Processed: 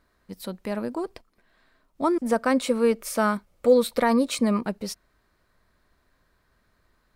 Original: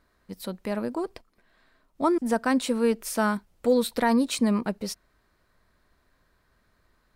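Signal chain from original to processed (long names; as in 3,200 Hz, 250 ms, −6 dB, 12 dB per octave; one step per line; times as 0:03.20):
0:02.18–0:04.57: hollow resonant body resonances 550/1,200/2,200 Hz, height 8 dB, ringing for 25 ms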